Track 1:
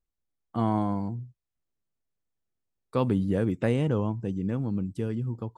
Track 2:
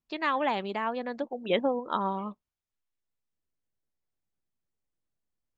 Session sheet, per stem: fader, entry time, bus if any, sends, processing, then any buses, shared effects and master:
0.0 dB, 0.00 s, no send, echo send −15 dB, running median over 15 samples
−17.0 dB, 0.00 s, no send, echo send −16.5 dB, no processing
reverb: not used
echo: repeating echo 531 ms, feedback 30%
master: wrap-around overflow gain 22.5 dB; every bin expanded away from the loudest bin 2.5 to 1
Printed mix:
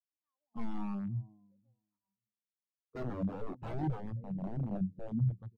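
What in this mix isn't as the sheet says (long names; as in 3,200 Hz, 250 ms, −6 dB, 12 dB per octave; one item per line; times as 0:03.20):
stem 1: missing running median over 15 samples
stem 2 −17.0 dB → −26.0 dB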